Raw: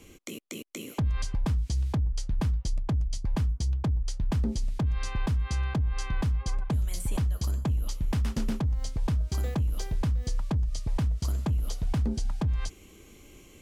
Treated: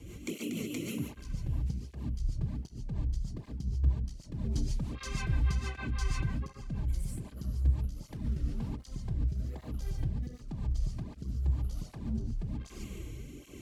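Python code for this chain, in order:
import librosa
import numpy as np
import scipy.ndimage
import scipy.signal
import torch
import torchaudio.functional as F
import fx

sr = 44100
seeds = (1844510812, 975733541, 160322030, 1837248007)

y = fx.low_shelf(x, sr, hz=190.0, db=-10.0, at=(4.44, 6.26))
y = 10.0 ** (-30.0 / 20.0) * np.tanh(y / 10.0 ** (-30.0 / 20.0))
y = fx.over_compress(y, sr, threshold_db=-38.0, ratio=-1.0)
y = fx.bass_treble(y, sr, bass_db=10, treble_db=-1)
y = fx.echo_feedback(y, sr, ms=554, feedback_pct=39, wet_db=-21.5)
y = fx.rev_gated(y, sr, seeds[0], gate_ms=160, shape='rising', drr_db=-1.5)
y = fx.rotary_switch(y, sr, hz=6.3, then_hz=1.0, switch_at_s=7.41)
y = fx.flanger_cancel(y, sr, hz=1.3, depth_ms=5.4)
y = y * 10.0 ** (-1.0 / 20.0)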